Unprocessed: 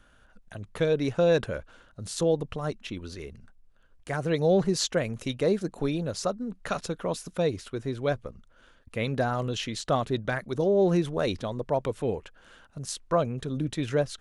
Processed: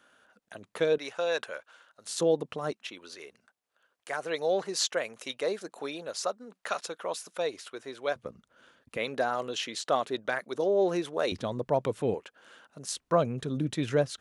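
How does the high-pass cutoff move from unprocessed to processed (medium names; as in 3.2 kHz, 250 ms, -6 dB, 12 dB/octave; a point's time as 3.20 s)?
300 Hz
from 0.98 s 760 Hz
from 2.09 s 240 Hz
from 2.73 s 570 Hz
from 8.16 s 160 Hz
from 8.97 s 390 Hz
from 11.32 s 110 Hz
from 12.14 s 270 Hz
from 12.90 s 110 Hz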